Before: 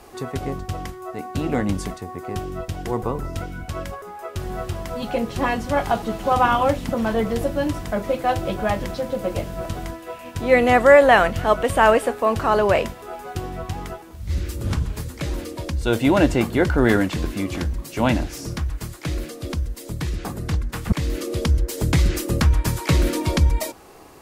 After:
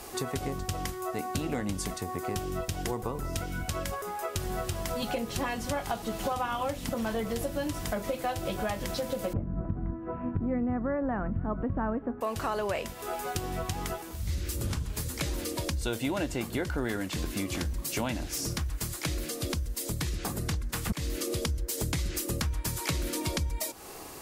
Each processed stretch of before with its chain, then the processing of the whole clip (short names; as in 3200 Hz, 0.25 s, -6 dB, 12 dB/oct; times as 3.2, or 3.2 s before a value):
9.33–12.21 LPF 1400 Hz 24 dB/oct + resonant low shelf 360 Hz +11 dB, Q 1.5
whole clip: high shelf 3600 Hz +10 dB; compressor 6:1, threshold -29 dBFS